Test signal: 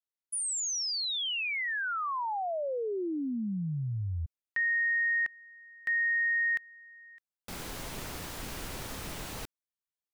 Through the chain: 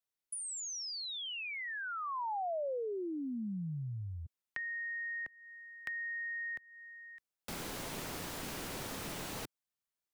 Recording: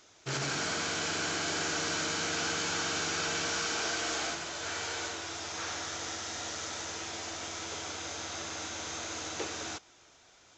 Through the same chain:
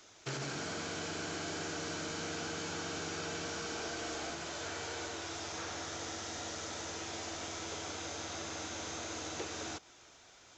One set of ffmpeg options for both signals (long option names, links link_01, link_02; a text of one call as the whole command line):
ffmpeg -i in.wav -filter_complex "[0:a]acrossover=split=120|730[link_01][link_02][link_03];[link_01]acompressor=threshold=-54dB:ratio=6[link_04];[link_02]acompressor=threshold=-43dB:ratio=2.5[link_05];[link_03]acompressor=threshold=-42dB:ratio=6[link_06];[link_04][link_05][link_06]amix=inputs=3:normalize=0,volume=1dB" out.wav